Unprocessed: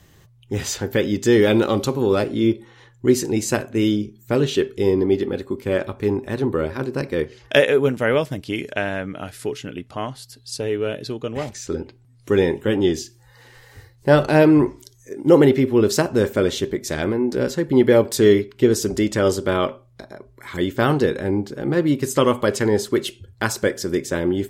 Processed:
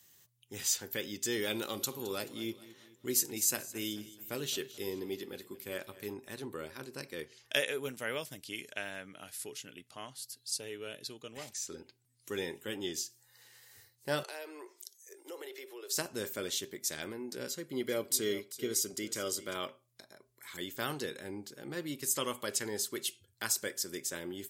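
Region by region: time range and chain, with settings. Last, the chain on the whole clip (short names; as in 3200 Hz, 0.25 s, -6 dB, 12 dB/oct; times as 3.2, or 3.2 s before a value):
1.55–6.14 bell 13000 Hz +7.5 dB 0.4 oct + feedback echo 0.216 s, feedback 49%, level -17.5 dB
14.23–15.97 steep high-pass 360 Hz 48 dB/oct + compressor 2.5:1, threshold -27 dBFS
17.49–19.56 notch comb 890 Hz + echo 0.392 s -15.5 dB
whole clip: HPF 110 Hz; pre-emphasis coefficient 0.9; gain -2 dB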